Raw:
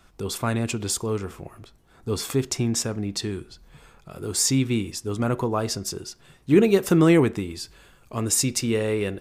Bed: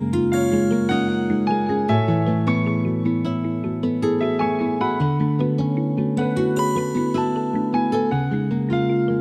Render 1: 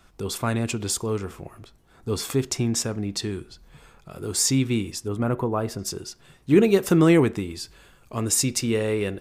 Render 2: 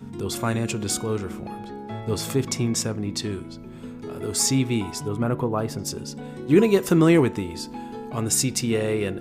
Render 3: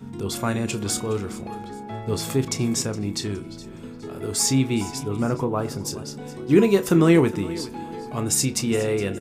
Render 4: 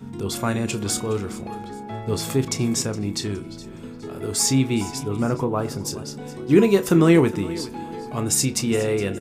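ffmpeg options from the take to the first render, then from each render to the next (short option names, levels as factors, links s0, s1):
-filter_complex "[0:a]asettb=1/sr,asplit=3[s0][s1][s2];[s0]atrim=end=5.084[s3];[s1]atrim=start=5.08:end=5.79,asetpts=PTS-STARTPTS,afade=t=in:d=0.004:c=qsin,afade=t=out:st=0.706:d=0.004:c=qsin,equalizer=f=5700:w=0.67:g=-12.5[s4];[s2]atrim=start=5.786[s5];[s3][s4]acrossfade=d=0.004:c1=hsin:c2=qsin[s6];[s6][s5]acrossfade=d=0.004:c1=qsin:c2=hsin"
-filter_complex "[1:a]volume=0.168[s0];[0:a][s0]amix=inputs=2:normalize=0"
-filter_complex "[0:a]asplit=2[s0][s1];[s1]adelay=30,volume=0.237[s2];[s0][s2]amix=inputs=2:normalize=0,aecho=1:1:416|832|1248:0.133|0.0453|0.0154"
-af "volume=1.12"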